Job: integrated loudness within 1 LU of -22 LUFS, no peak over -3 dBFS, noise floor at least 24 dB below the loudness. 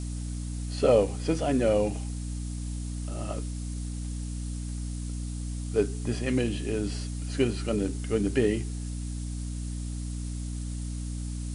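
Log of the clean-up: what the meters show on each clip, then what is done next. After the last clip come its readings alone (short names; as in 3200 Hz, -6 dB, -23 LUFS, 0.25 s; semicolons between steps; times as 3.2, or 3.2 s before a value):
hum 60 Hz; harmonics up to 300 Hz; hum level -31 dBFS; noise floor -34 dBFS; noise floor target -55 dBFS; loudness -30.5 LUFS; peak -10.0 dBFS; loudness target -22.0 LUFS
-> notches 60/120/180/240/300 Hz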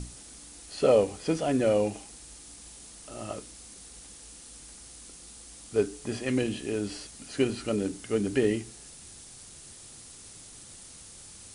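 hum none; noise floor -49 dBFS; noise floor target -53 dBFS
-> noise print and reduce 6 dB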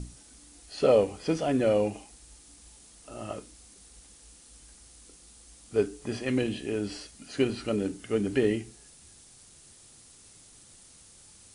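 noise floor -55 dBFS; loudness -28.5 LUFS; peak -10.5 dBFS; loudness target -22.0 LUFS
-> gain +6.5 dB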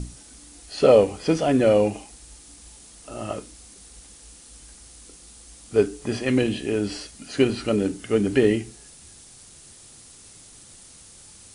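loudness -22.0 LUFS; peak -4.0 dBFS; noise floor -48 dBFS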